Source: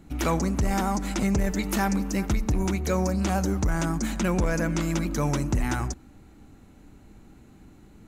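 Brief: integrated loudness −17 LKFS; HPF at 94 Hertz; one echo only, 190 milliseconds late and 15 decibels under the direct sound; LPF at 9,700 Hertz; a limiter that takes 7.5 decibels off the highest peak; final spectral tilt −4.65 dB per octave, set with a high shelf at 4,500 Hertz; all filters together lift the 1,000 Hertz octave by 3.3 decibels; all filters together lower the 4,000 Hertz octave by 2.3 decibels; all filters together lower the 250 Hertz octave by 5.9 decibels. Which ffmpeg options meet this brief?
ffmpeg -i in.wav -af "highpass=94,lowpass=9700,equalizer=frequency=250:width_type=o:gain=-9,equalizer=frequency=1000:width_type=o:gain=5,equalizer=frequency=4000:width_type=o:gain=-8,highshelf=frequency=4500:gain=7.5,alimiter=limit=-20.5dB:level=0:latency=1,aecho=1:1:190:0.178,volume=14dB" out.wav

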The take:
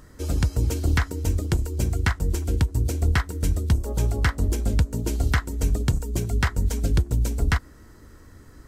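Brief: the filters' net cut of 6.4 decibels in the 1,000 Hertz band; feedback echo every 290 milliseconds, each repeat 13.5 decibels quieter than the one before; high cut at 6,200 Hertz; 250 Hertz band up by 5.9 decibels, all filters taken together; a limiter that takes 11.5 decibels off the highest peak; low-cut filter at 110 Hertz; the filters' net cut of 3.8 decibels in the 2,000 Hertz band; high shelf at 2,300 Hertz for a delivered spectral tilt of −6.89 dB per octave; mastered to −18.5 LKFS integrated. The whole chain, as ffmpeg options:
ffmpeg -i in.wav -af "highpass=110,lowpass=6200,equalizer=frequency=250:width_type=o:gain=8.5,equalizer=frequency=1000:width_type=o:gain=-9,equalizer=frequency=2000:width_type=o:gain=-3.5,highshelf=frequency=2300:gain=4,alimiter=limit=-19.5dB:level=0:latency=1,aecho=1:1:290|580:0.211|0.0444,volume=12dB" out.wav

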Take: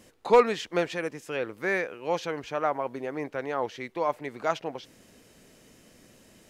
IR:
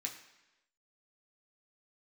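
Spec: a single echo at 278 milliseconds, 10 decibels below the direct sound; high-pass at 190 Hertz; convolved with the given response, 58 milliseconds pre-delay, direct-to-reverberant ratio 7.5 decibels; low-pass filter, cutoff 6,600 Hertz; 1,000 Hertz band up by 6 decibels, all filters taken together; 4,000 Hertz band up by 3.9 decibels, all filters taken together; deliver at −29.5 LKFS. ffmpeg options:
-filter_complex "[0:a]highpass=190,lowpass=6600,equalizer=frequency=1000:width_type=o:gain=7,equalizer=frequency=4000:width_type=o:gain=5,aecho=1:1:278:0.316,asplit=2[link_01][link_02];[1:a]atrim=start_sample=2205,adelay=58[link_03];[link_02][link_03]afir=irnorm=-1:irlink=0,volume=-7dB[link_04];[link_01][link_04]amix=inputs=2:normalize=0,volume=-4.5dB"

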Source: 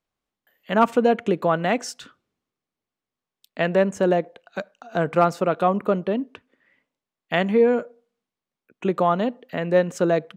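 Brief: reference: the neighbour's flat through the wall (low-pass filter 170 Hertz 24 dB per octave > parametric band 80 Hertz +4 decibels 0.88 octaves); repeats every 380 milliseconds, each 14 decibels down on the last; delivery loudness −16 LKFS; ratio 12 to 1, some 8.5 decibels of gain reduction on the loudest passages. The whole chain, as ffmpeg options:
ffmpeg -i in.wav -af "acompressor=threshold=-21dB:ratio=12,lowpass=frequency=170:width=0.5412,lowpass=frequency=170:width=1.3066,equalizer=frequency=80:width_type=o:width=0.88:gain=4,aecho=1:1:380|760:0.2|0.0399,volume=24dB" out.wav

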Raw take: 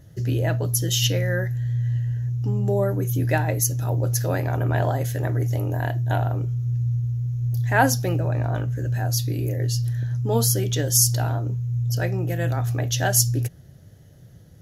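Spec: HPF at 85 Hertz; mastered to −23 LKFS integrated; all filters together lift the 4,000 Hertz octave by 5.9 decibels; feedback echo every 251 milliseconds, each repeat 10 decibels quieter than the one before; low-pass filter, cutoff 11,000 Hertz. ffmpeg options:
ffmpeg -i in.wav -af "highpass=85,lowpass=11000,equalizer=frequency=4000:width_type=o:gain=8.5,aecho=1:1:251|502|753|1004:0.316|0.101|0.0324|0.0104,volume=-1.5dB" out.wav

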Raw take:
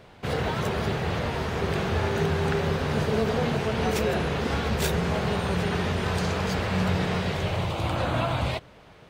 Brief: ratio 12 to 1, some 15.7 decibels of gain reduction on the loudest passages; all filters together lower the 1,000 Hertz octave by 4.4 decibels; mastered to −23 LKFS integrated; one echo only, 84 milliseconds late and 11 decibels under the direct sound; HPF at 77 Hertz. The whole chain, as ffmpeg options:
ffmpeg -i in.wav -af "highpass=77,equalizer=frequency=1000:width_type=o:gain=-6,acompressor=threshold=-38dB:ratio=12,aecho=1:1:84:0.282,volume=18.5dB" out.wav

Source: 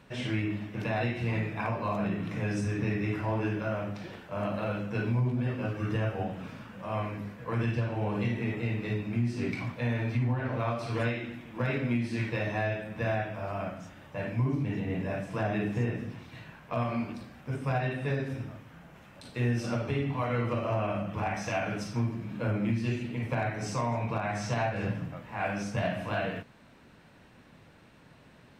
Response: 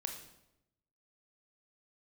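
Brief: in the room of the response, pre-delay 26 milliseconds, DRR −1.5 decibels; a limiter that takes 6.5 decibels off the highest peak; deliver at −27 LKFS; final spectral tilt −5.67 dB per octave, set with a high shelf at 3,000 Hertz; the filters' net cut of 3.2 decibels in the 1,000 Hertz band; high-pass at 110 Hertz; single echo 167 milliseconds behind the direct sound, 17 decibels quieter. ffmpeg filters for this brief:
-filter_complex "[0:a]highpass=110,equalizer=frequency=1000:width_type=o:gain=-4,highshelf=frequency=3000:gain=-4.5,alimiter=level_in=1.5dB:limit=-24dB:level=0:latency=1,volume=-1.5dB,aecho=1:1:167:0.141,asplit=2[link_01][link_02];[1:a]atrim=start_sample=2205,adelay=26[link_03];[link_02][link_03]afir=irnorm=-1:irlink=0,volume=2dB[link_04];[link_01][link_04]amix=inputs=2:normalize=0,volume=4.5dB"

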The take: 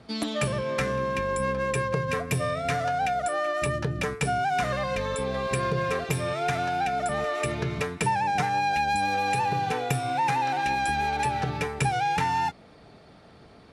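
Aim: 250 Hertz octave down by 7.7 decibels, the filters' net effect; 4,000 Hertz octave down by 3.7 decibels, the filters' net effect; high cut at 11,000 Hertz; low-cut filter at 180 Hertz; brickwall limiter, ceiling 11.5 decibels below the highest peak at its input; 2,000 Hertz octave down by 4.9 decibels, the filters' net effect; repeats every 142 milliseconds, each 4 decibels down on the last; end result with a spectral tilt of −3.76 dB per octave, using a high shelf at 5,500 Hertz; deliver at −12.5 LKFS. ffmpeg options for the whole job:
ffmpeg -i in.wav -af "highpass=180,lowpass=11000,equalizer=frequency=250:width_type=o:gain=-8.5,equalizer=frequency=2000:width_type=o:gain=-6,equalizer=frequency=4000:width_type=o:gain=-5.5,highshelf=frequency=5500:gain=7,alimiter=level_in=3dB:limit=-24dB:level=0:latency=1,volume=-3dB,aecho=1:1:142|284|426|568|710|852|994|1136|1278:0.631|0.398|0.25|0.158|0.0994|0.0626|0.0394|0.0249|0.0157,volume=19.5dB" out.wav

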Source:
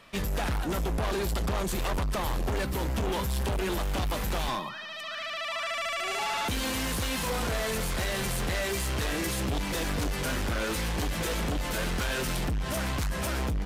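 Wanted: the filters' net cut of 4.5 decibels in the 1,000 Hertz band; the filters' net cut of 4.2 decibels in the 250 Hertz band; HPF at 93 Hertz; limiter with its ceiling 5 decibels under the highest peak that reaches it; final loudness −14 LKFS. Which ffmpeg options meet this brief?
ffmpeg -i in.wav -af "highpass=93,equalizer=frequency=250:width_type=o:gain=-5.5,equalizer=frequency=1000:width_type=o:gain=-5.5,volume=20.5dB,alimiter=limit=-5dB:level=0:latency=1" out.wav

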